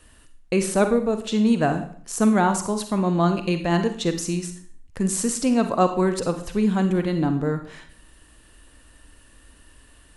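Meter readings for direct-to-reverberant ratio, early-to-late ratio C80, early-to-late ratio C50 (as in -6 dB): 7.5 dB, 13.5 dB, 9.0 dB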